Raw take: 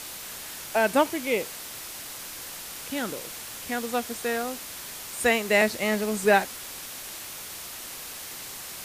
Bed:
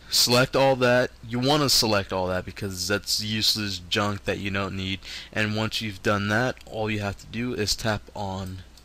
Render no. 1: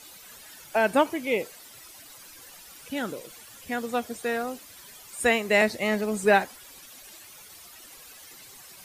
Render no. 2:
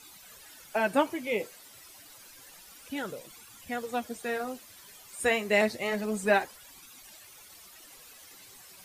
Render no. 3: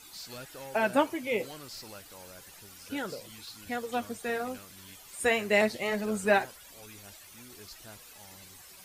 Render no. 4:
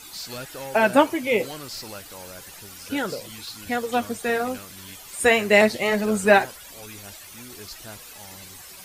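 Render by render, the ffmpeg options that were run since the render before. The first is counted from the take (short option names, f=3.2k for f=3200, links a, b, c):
-af "afftdn=nr=13:nf=-39"
-af "flanger=delay=0.8:depth=10:regen=-39:speed=0.29:shape=sinusoidal"
-filter_complex "[1:a]volume=-25dB[a];[0:a][a]amix=inputs=2:normalize=0"
-af "volume=8.5dB"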